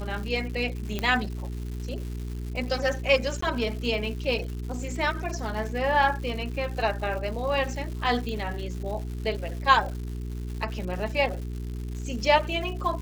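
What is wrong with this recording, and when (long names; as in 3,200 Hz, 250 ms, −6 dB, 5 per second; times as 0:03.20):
surface crackle 300 per second −36 dBFS
mains hum 60 Hz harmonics 7 −33 dBFS
0:00.99: click −14 dBFS
0:03.41–0:03.42: drop-out 14 ms
0:08.29: click −22 dBFS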